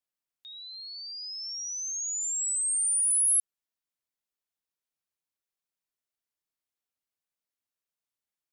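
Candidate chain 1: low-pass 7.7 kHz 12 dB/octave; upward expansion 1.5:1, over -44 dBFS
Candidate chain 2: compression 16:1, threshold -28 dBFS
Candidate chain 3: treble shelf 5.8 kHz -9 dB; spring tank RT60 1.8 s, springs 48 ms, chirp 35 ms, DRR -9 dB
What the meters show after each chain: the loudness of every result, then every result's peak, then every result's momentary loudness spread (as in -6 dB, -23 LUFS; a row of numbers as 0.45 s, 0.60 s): -31.5 LUFS, -29.5 LUFS, -33.0 LUFS; -28.5 dBFS, -26.5 dBFS, -27.0 dBFS; 16 LU, 13 LU, 10 LU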